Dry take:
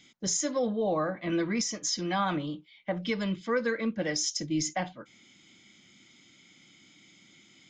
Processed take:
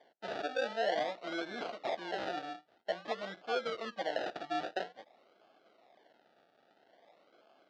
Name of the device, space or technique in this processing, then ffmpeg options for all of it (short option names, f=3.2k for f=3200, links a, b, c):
circuit-bent sampling toy: -af "acrusher=samples=33:mix=1:aa=0.000001:lfo=1:lforange=19.8:lforate=0.5,highpass=570,equalizer=f=680:t=q:w=4:g=7,equalizer=f=1k:t=q:w=4:g=-8,equalizer=f=2.4k:t=q:w=4:g=-6,lowpass=f=4.3k:w=0.5412,lowpass=f=4.3k:w=1.3066,volume=-2.5dB"